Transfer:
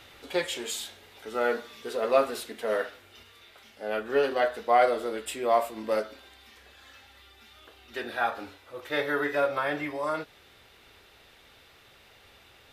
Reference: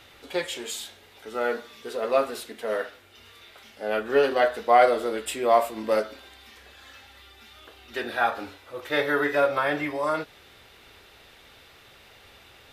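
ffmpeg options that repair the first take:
ffmpeg -i in.wav -af "asetnsamples=nb_out_samples=441:pad=0,asendcmd='3.23 volume volume 4dB',volume=0dB" out.wav

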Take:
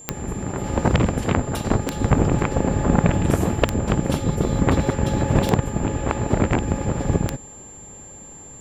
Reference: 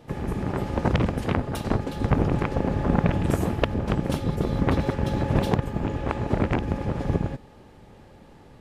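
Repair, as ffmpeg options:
ffmpeg -i in.wav -af "adeclick=threshold=4,bandreject=frequency=7300:width=30,asetnsamples=nb_out_samples=441:pad=0,asendcmd='0.64 volume volume -4dB',volume=0dB" out.wav

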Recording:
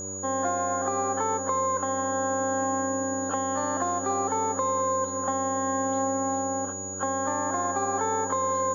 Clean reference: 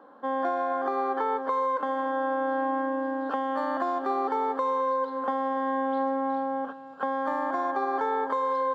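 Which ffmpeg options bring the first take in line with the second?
ffmpeg -i in.wav -af "bandreject=frequency=95.1:width_type=h:width=4,bandreject=frequency=190.2:width_type=h:width=4,bandreject=frequency=285.3:width_type=h:width=4,bandreject=frequency=380.4:width_type=h:width=4,bandreject=frequency=475.5:width_type=h:width=4,bandreject=frequency=570.6:width_type=h:width=4,bandreject=frequency=6800:width=30" out.wav

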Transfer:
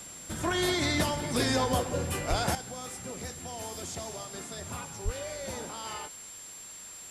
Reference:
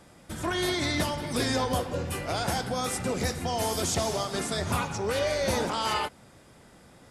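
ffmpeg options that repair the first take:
ffmpeg -i in.wav -filter_complex "[0:a]bandreject=frequency=7400:width=30,asplit=3[link_01][link_02][link_03];[link_01]afade=type=out:start_time=2.29:duration=0.02[link_04];[link_02]highpass=frequency=140:width=0.5412,highpass=frequency=140:width=1.3066,afade=type=in:start_time=2.29:duration=0.02,afade=type=out:start_time=2.41:duration=0.02[link_05];[link_03]afade=type=in:start_time=2.41:duration=0.02[link_06];[link_04][link_05][link_06]amix=inputs=3:normalize=0,asplit=3[link_07][link_08][link_09];[link_07]afade=type=out:start_time=5.04:duration=0.02[link_10];[link_08]highpass=frequency=140:width=0.5412,highpass=frequency=140:width=1.3066,afade=type=in:start_time=5.04:duration=0.02,afade=type=out:start_time=5.16:duration=0.02[link_11];[link_09]afade=type=in:start_time=5.16:duration=0.02[link_12];[link_10][link_11][link_12]amix=inputs=3:normalize=0,afwtdn=0.0035,asetnsamples=nb_out_samples=441:pad=0,asendcmd='2.55 volume volume 11.5dB',volume=0dB" out.wav

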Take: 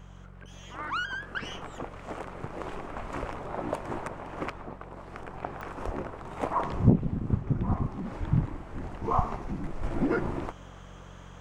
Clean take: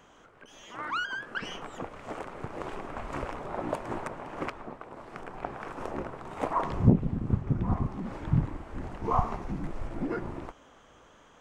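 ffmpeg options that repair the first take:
ffmpeg -i in.wav -filter_complex "[0:a]adeclick=threshold=4,bandreject=frequency=45.9:width_type=h:width=4,bandreject=frequency=91.8:width_type=h:width=4,bandreject=frequency=137.7:width_type=h:width=4,bandreject=frequency=183.6:width_type=h:width=4,asplit=3[link_01][link_02][link_03];[link_01]afade=type=out:start_time=5.85:duration=0.02[link_04];[link_02]highpass=frequency=140:width=0.5412,highpass=frequency=140:width=1.3066,afade=type=in:start_time=5.85:duration=0.02,afade=type=out:start_time=5.97:duration=0.02[link_05];[link_03]afade=type=in:start_time=5.97:duration=0.02[link_06];[link_04][link_05][link_06]amix=inputs=3:normalize=0,asplit=3[link_07][link_08][link_09];[link_07]afade=type=out:start_time=8.19:duration=0.02[link_10];[link_08]highpass=frequency=140:width=0.5412,highpass=frequency=140:width=1.3066,afade=type=in:start_time=8.19:duration=0.02,afade=type=out:start_time=8.31:duration=0.02[link_11];[link_09]afade=type=in:start_time=8.31:duration=0.02[link_12];[link_10][link_11][link_12]amix=inputs=3:normalize=0,asetnsamples=nb_out_samples=441:pad=0,asendcmd='9.83 volume volume -5.5dB',volume=0dB" out.wav

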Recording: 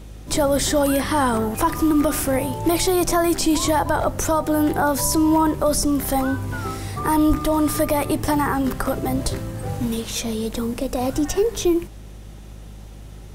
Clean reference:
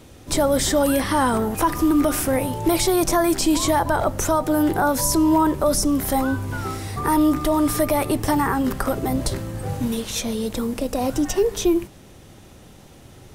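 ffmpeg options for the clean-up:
ffmpeg -i in.wav -filter_complex "[0:a]bandreject=frequency=51.5:width_type=h:width=4,bandreject=frequency=103:width_type=h:width=4,bandreject=frequency=154.5:width_type=h:width=4,bandreject=frequency=206:width_type=h:width=4,asplit=3[link_01][link_02][link_03];[link_01]afade=type=out:start_time=7.28:duration=0.02[link_04];[link_02]highpass=frequency=140:width=0.5412,highpass=frequency=140:width=1.3066,afade=type=in:start_time=7.28:duration=0.02,afade=type=out:start_time=7.4:duration=0.02[link_05];[link_03]afade=type=in:start_time=7.4:duration=0.02[link_06];[link_04][link_05][link_06]amix=inputs=3:normalize=0" out.wav

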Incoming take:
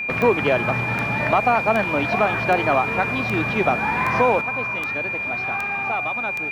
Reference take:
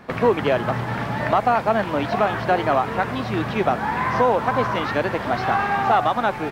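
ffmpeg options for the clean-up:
ffmpeg -i in.wav -af "adeclick=threshold=4,bandreject=frequency=2400:width=30,asetnsamples=nb_out_samples=441:pad=0,asendcmd='4.41 volume volume 9dB',volume=0dB" out.wav

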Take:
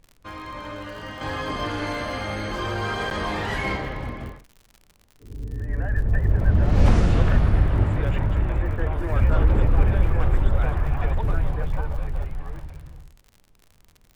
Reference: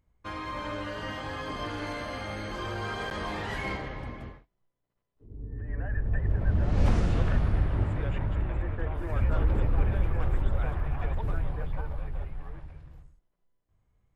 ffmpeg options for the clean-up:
ffmpeg -i in.wav -af "adeclick=threshold=4,agate=range=-21dB:threshold=-47dB,asetnsamples=nb_out_samples=441:pad=0,asendcmd='1.21 volume volume -7dB',volume=0dB" out.wav

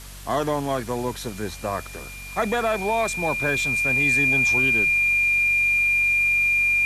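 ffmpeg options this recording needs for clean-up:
ffmpeg -i in.wav -af "bandreject=frequency=47.2:width_type=h:width=4,bandreject=frequency=94.4:width_type=h:width=4,bandreject=frequency=141.6:width_type=h:width=4,bandreject=frequency=188.8:width_type=h:width=4,bandreject=frequency=236:width_type=h:width=4,bandreject=frequency=2400:width=30,afwtdn=0.0079" out.wav

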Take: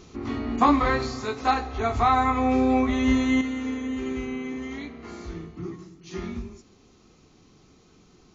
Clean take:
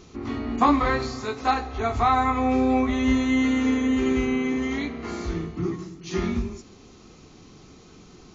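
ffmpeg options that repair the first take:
ffmpeg -i in.wav -af "asetnsamples=nb_out_samples=441:pad=0,asendcmd='3.41 volume volume 7.5dB',volume=0dB" out.wav

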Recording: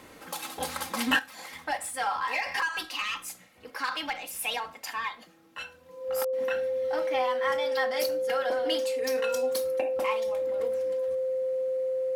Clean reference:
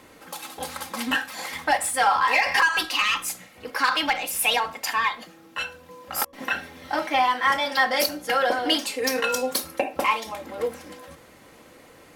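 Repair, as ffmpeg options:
ffmpeg -i in.wav -af "bandreject=frequency=520:width=30,asetnsamples=nb_out_samples=441:pad=0,asendcmd='1.19 volume volume 9.5dB',volume=0dB" out.wav

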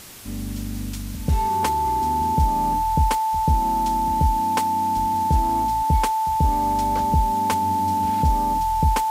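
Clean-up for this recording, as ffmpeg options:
ffmpeg -i in.wav -af "adeclick=threshold=4,bandreject=frequency=880:width=30,afwtdn=0.0089" out.wav

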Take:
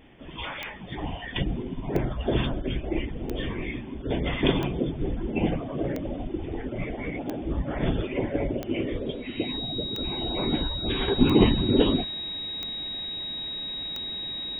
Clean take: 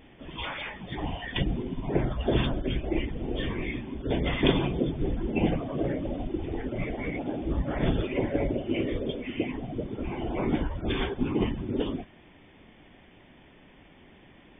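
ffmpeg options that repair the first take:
ffmpeg -i in.wav -af "adeclick=threshold=4,bandreject=frequency=3800:width=30,asetnsamples=nb_out_samples=441:pad=0,asendcmd='11.08 volume volume -8.5dB',volume=0dB" out.wav

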